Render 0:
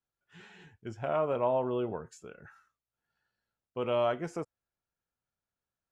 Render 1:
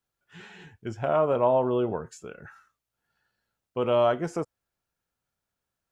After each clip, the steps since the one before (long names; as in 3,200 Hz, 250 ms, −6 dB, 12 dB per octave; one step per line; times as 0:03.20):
dynamic equaliser 2,300 Hz, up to −5 dB, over −52 dBFS, Q 2
level +6.5 dB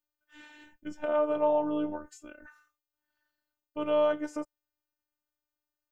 phases set to zero 301 Hz
level −2.5 dB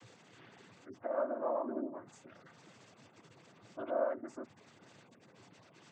background noise pink −48 dBFS
gate on every frequency bin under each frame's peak −20 dB strong
cochlear-implant simulation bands 16
level −8 dB